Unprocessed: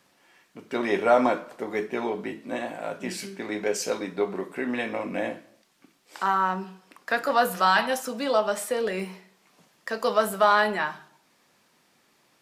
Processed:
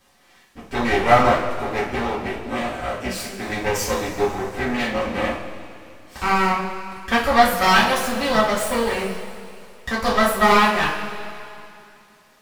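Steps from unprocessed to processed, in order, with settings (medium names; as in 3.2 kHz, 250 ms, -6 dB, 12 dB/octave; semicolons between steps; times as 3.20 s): half-wave rectifier; two-slope reverb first 0.31 s, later 2.7 s, from -16 dB, DRR -7 dB; trim +2.5 dB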